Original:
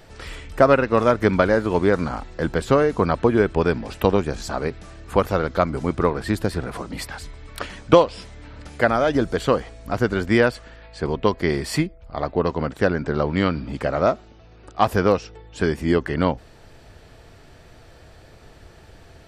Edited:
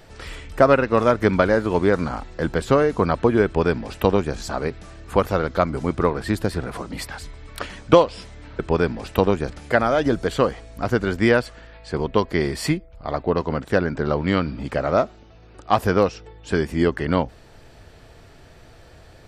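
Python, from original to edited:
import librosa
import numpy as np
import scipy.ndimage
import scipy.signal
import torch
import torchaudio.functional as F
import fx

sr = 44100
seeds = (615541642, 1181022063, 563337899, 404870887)

y = fx.edit(x, sr, fx.duplicate(start_s=3.45, length_s=0.91, to_s=8.59), tone=tone)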